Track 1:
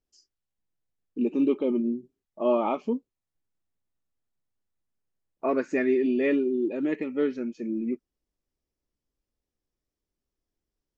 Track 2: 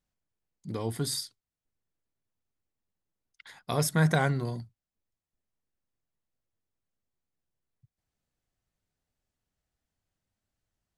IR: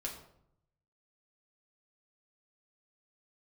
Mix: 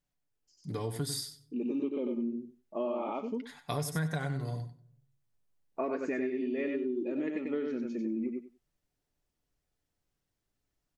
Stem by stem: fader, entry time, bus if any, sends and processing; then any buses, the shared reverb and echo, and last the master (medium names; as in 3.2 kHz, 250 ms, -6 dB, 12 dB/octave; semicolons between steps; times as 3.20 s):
-2.0 dB, 0.35 s, no send, echo send -4.5 dB, auto duck -11 dB, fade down 0.80 s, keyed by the second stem
-3.0 dB, 0.00 s, send -14 dB, echo send -10 dB, comb 6.9 ms, depth 43%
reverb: on, RT60 0.70 s, pre-delay 3 ms
echo: feedback delay 94 ms, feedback 15%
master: compression 6:1, threshold -30 dBFS, peak gain reduction 11.5 dB